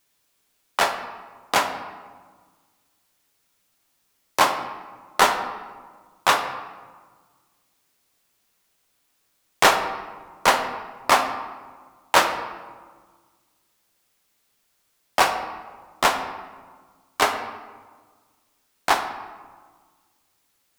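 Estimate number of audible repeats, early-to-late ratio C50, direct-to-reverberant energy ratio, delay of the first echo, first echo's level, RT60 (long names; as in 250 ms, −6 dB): no echo audible, 8.5 dB, 5.5 dB, no echo audible, no echo audible, 1.5 s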